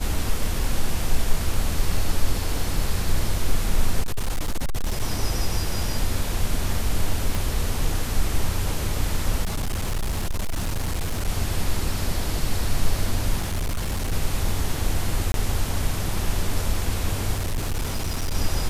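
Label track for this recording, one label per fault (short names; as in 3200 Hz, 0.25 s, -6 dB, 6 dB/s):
4.020000	5.020000	clipped -19.5 dBFS
7.350000	7.350000	pop
9.420000	11.290000	clipped -21 dBFS
13.410000	14.130000	clipped -21 dBFS
15.320000	15.340000	gap 22 ms
17.360000	18.350000	clipped -21 dBFS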